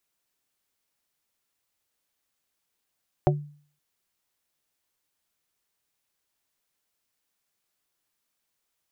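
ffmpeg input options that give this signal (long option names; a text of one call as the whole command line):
ffmpeg -f lavfi -i "aevalsrc='0.141*pow(10,-3*t/0.48)*sin(2*PI*147*t)+0.141*pow(10,-3*t/0.16)*sin(2*PI*367.5*t)+0.141*pow(10,-3*t/0.091)*sin(2*PI*588*t)+0.141*pow(10,-3*t/0.07)*sin(2*PI*735*t)':duration=0.52:sample_rate=44100" out.wav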